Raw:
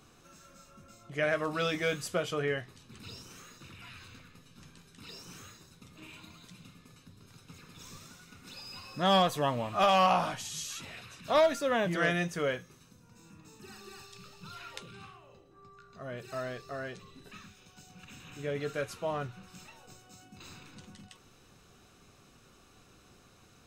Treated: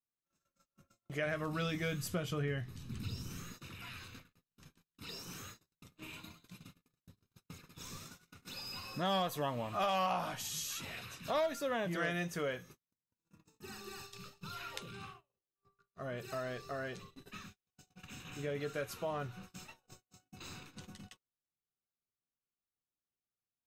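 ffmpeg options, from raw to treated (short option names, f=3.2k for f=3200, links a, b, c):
-filter_complex "[0:a]asplit=3[a][b][c];[a]afade=t=out:st=1.25:d=0.02[d];[b]asubboost=boost=5.5:cutoff=250,afade=t=in:st=1.25:d=0.02,afade=t=out:st=3.52:d=0.02[e];[c]afade=t=in:st=3.52:d=0.02[f];[d][e][f]amix=inputs=3:normalize=0,agate=range=-45dB:threshold=-51dB:ratio=16:detection=peak,equalizer=f=12k:w=7.4:g=13,acompressor=threshold=-40dB:ratio=2,volume=1dB"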